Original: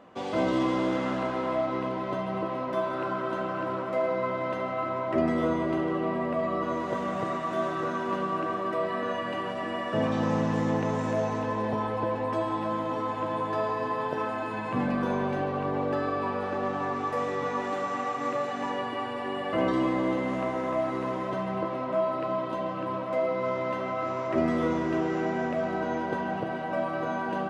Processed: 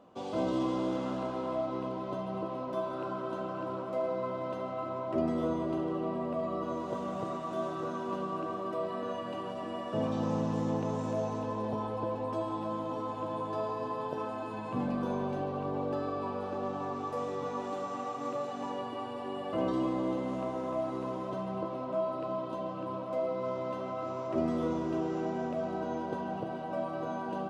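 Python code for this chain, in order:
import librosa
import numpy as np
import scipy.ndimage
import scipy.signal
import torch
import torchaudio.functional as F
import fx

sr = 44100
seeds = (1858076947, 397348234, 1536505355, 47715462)

y = fx.peak_eq(x, sr, hz=1900.0, db=-11.5, octaves=0.79)
y = y * 10.0 ** (-4.5 / 20.0)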